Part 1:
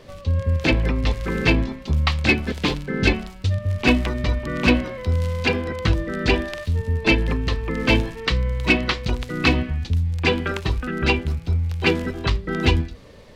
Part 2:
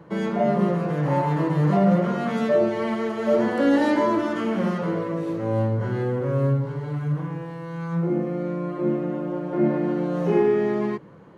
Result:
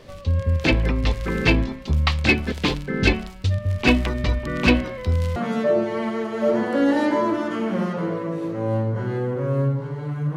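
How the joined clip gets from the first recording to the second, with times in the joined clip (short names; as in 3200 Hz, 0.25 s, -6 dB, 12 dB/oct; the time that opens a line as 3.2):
part 1
5.36 switch to part 2 from 2.21 s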